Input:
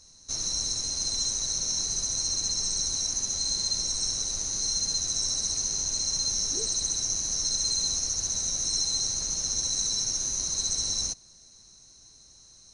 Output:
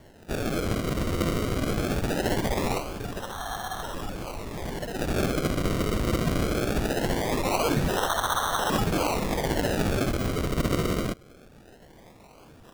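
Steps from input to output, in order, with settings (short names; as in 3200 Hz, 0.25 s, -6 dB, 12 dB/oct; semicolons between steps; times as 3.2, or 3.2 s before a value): 2.78–4.99 high shelf 3100 Hz -11.5 dB; decimation with a swept rate 35×, swing 100% 0.21 Hz; gain +3 dB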